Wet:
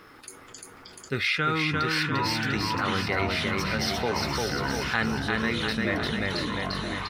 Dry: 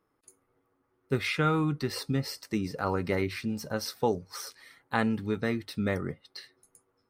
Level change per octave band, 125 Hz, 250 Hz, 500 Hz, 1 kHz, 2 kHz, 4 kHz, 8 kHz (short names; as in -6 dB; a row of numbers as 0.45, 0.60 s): +2.0, +1.5, +1.0, +6.0, +10.0, +10.5, +5.5 dB